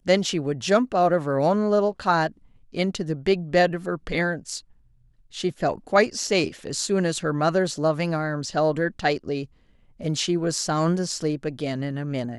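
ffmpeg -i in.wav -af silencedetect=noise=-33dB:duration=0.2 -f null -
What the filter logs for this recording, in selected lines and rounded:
silence_start: 2.28
silence_end: 2.75 | silence_duration: 0.47
silence_start: 4.59
silence_end: 5.34 | silence_duration: 0.75
silence_start: 9.45
silence_end: 10.01 | silence_duration: 0.56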